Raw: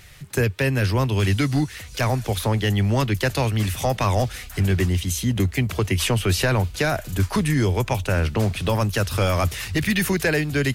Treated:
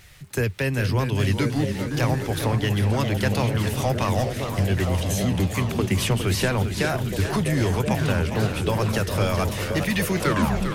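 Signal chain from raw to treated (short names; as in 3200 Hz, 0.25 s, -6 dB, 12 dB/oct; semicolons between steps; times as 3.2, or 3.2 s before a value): tape stop at the end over 0.58 s; crackle 330/s -47 dBFS; delay with a stepping band-pass 0.513 s, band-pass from 180 Hz, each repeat 1.4 oct, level -0.5 dB; warbling echo 0.405 s, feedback 65%, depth 141 cents, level -9 dB; gain -3 dB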